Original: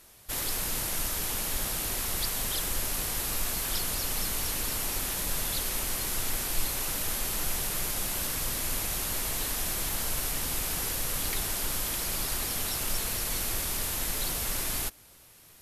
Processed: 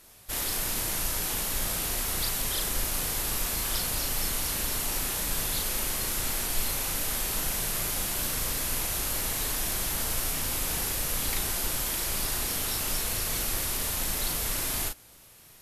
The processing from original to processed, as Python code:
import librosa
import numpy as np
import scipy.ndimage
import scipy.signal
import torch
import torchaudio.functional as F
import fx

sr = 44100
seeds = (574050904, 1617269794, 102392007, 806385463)

y = fx.doubler(x, sr, ms=37.0, db=-4.0)